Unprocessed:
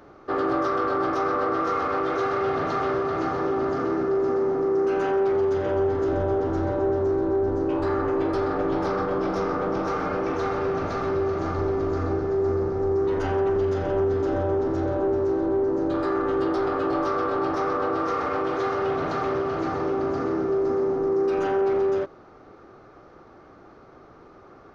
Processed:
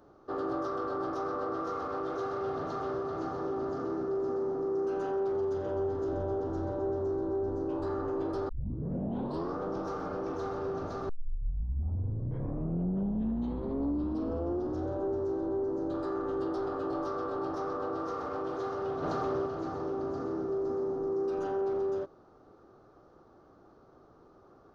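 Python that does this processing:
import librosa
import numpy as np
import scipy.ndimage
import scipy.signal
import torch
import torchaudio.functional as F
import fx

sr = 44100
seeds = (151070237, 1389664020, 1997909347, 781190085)

y = fx.env_flatten(x, sr, amount_pct=70, at=(19.02, 19.45), fade=0.02)
y = fx.edit(y, sr, fx.tape_start(start_s=8.49, length_s=1.07),
    fx.tape_start(start_s=11.09, length_s=3.83), tone=tone)
y = fx.peak_eq(y, sr, hz=2200.0, db=-13.0, octaves=0.85)
y = F.gain(torch.from_numpy(y), -8.5).numpy()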